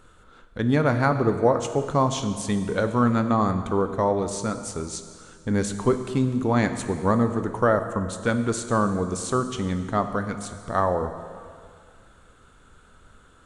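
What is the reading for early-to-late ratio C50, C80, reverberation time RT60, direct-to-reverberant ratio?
9.5 dB, 10.5 dB, 2.1 s, 8.0 dB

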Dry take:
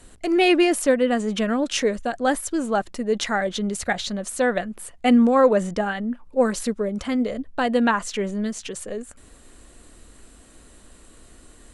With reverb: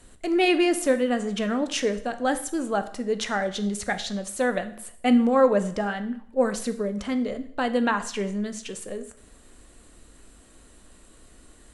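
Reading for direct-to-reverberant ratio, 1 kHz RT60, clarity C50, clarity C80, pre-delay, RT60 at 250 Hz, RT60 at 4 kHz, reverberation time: 9.5 dB, 0.65 s, 13.5 dB, 16.5 dB, 5 ms, 0.65 s, 0.60 s, 0.65 s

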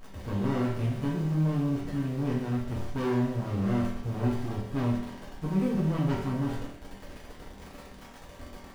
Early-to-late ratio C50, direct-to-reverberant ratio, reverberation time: 2.5 dB, -6.5 dB, 0.70 s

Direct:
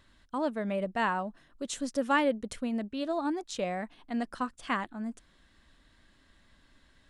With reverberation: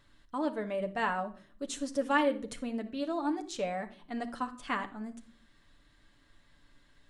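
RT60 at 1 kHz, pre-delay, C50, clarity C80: no reading, 7 ms, 14.0 dB, 19.0 dB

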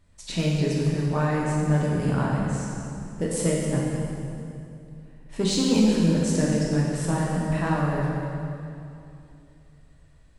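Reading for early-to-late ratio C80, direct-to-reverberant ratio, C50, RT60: 0.5 dB, -4.0 dB, -1.0 dB, 2.7 s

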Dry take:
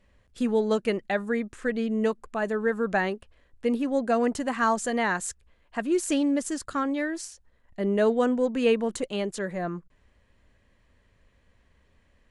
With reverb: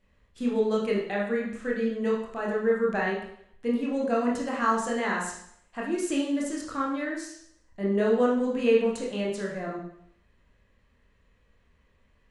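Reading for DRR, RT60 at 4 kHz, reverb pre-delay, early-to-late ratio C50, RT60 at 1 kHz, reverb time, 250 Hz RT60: -4.0 dB, 0.65 s, 23 ms, 4.0 dB, 0.70 s, 0.65 s, 0.65 s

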